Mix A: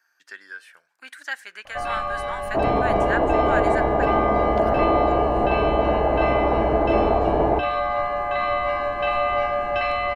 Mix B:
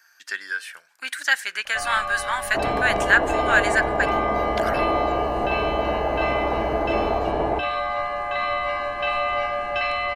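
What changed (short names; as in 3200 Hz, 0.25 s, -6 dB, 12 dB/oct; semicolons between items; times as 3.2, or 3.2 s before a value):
speech +9.5 dB; master: add tilt shelf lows -5 dB, about 1500 Hz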